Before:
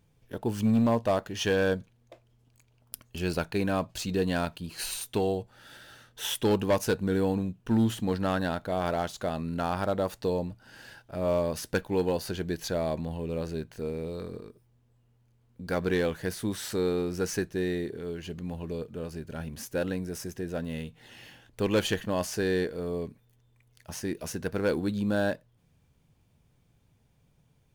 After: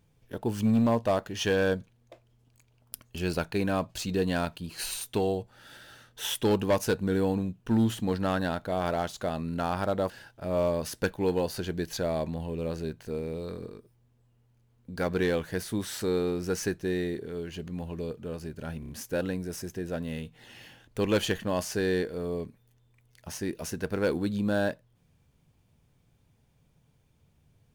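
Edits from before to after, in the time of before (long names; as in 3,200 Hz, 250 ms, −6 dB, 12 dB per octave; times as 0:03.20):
0:10.10–0:10.81: remove
0:19.51: stutter 0.03 s, 4 plays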